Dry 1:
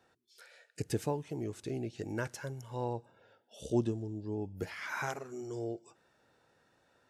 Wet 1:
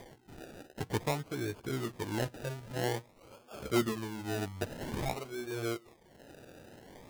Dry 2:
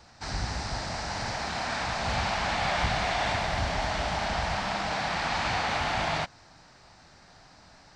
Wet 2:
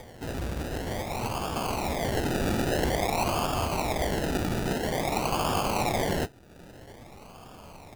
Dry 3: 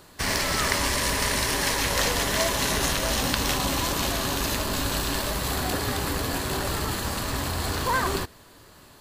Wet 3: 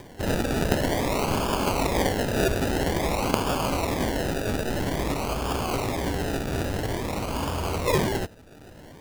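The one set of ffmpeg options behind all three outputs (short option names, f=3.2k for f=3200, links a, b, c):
-filter_complex "[0:a]acrossover=split=330|1500|5000[a][b][c][d];[a]asoftclip=type=tanh:threshold=-30dB[e];[e][b][c][d]amix=inputs=4:normalize=0,flanger=delay=8.1:depth=6.4:regen=-30:speed=0.86:shape=sinusoidal,highshelf=f=9.7k:g=-11.5,acrusher=samples=32:mix=1:aa=0.000001:lfo=1:lforange=19.2:lforate=0.5,acompressor=mode=upward:threshold=-44dB:ratio=2.5,volume=5.5dB"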